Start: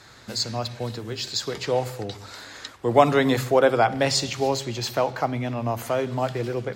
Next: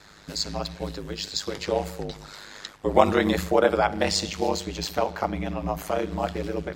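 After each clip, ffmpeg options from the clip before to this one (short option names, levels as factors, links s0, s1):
-af "aeval=exprs='val(0)*sin(2*PI*51*n/s)':c=same,volume=1.12"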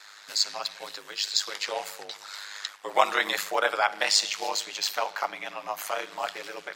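-af "highpass=1100,volume=1.58"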